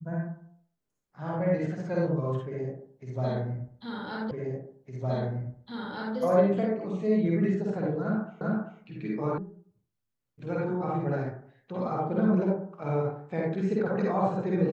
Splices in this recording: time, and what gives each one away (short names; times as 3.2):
4.31 repeat of the last 1.86 s
8.41 repeat of the last 0.39 s
9.38 sound cut off